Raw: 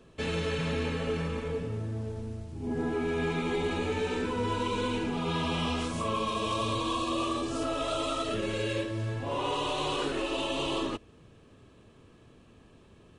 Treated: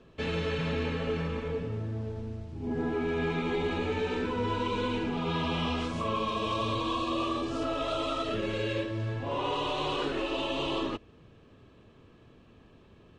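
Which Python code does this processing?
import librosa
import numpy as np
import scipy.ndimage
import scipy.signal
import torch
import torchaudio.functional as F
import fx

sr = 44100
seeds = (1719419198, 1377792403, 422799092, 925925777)

y = scipy.signal.sosfilt(scipy.signal.butter(2, 4700.0, 'lowpass', fs=sr, output='sos'), x)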